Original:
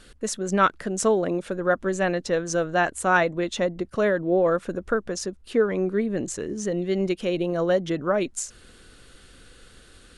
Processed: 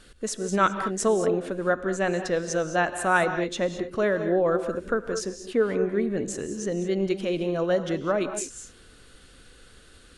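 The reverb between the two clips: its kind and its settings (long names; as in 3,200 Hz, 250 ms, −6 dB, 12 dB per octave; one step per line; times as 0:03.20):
reverb whose tail is shaped and stops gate 240 ms rising, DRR 8.5 dB
level −2 dB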